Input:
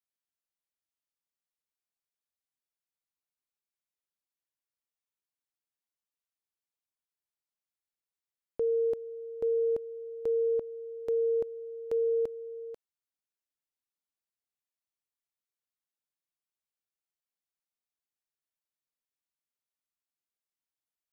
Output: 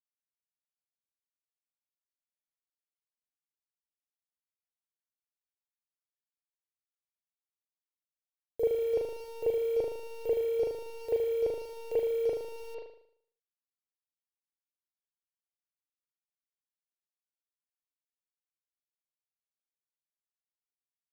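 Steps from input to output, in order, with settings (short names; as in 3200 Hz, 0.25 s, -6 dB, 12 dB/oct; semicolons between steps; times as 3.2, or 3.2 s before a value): level-crossing sampler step -44.5 dBFS; fixed phaser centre 530 Hz, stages 4; reverb RT60 0.65 s, pre-delay 38 ms, DRR -12 dB; gain -2.5 dB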